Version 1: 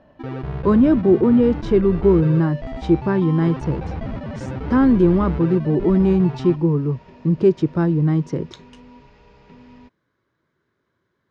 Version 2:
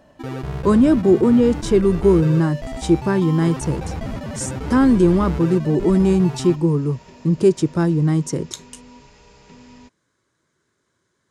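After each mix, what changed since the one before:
master: remove high-frequency loss of the air 260 metres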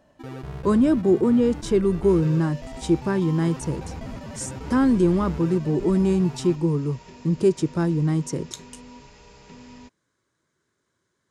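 speech −4.5 dB
first sound −7.5 dB

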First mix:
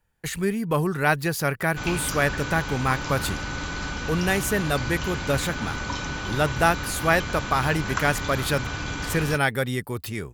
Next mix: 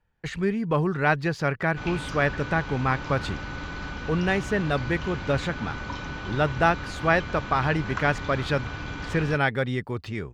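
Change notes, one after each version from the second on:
background −3.0 dB
master: add high-frequency loss of the air 160 metres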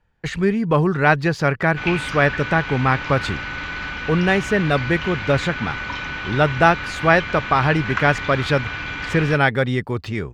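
speech +6.5 dB
background: add parametric band 2,200 Hz +13.5 dB 1.7 octaves

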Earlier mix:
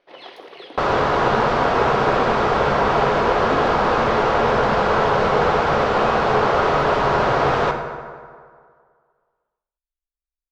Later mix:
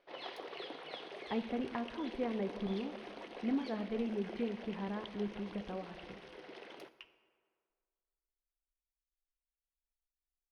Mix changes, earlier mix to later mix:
speech: send −11.0 dB
first sound −6.0 dB
second sound: muted

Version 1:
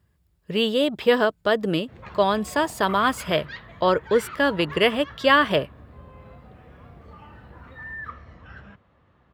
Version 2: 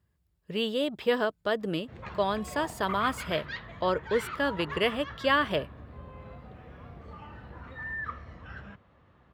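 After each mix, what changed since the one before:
speech −7.5 dB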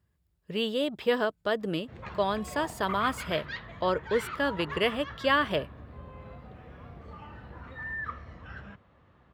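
nothing changed

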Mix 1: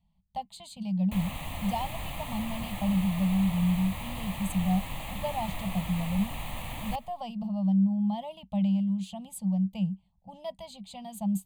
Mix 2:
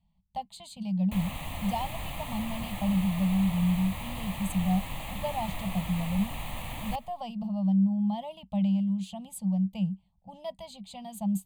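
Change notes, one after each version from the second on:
nothing changed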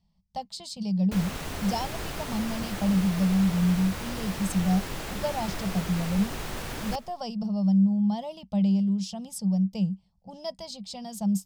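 master: remove phaser with its sweep stopped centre 1,500 Hz, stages 6

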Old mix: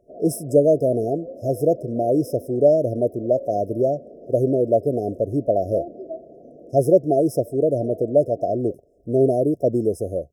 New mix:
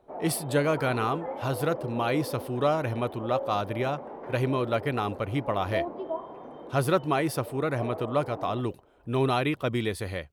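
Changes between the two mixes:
speech: add parametric band 590 Hz −11.5 dB 2.7 octaves
master: remove linear-phase brick-wall band-stop 720–5,000 Hz

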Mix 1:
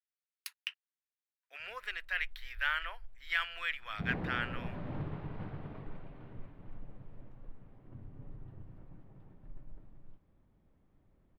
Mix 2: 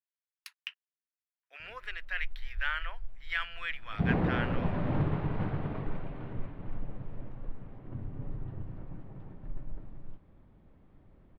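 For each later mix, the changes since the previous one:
background +10.0 dB
master: add high-shelf EQ 7,300 Hz −11.5 dB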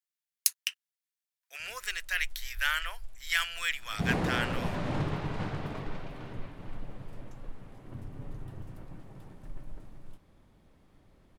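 background: add low-shelf EQ 380 Hz −3.5 dB
master: remove high-frequency loss of the air 430 metres

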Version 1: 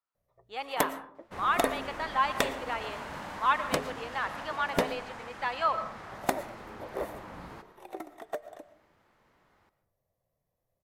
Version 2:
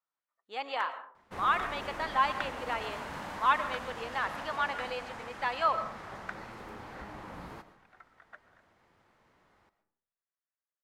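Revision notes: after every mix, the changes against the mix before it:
first sound: add four-pole ladder band-pass 1,600 Hz, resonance 70%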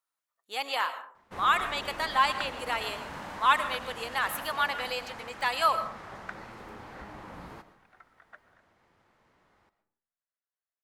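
speech: remove head-to-tape spacing loss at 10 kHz 25 dB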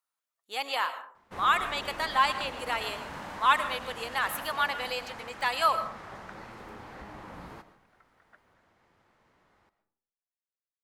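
first sound −8.0 dB

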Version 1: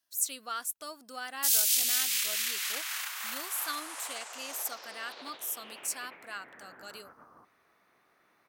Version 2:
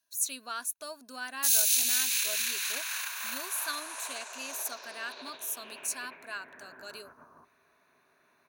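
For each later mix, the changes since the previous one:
master: add EQ curve with evenly spaced ripples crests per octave 1.5, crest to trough 8 dB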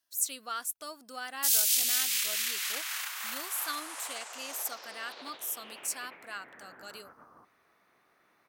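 master: remove EQ curve with evenly spaced ripples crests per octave 1.5, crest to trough 8 dB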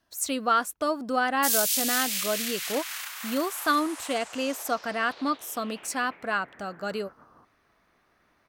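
speech: remove first-order pre-emphasis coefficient 0.9
master: add low-shelf EQ 170 Hz +8 dB

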